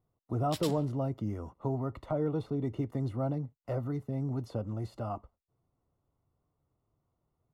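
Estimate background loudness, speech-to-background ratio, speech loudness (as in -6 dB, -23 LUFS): -43.0 LUFS, 8.5 dB, -34.5 LUFS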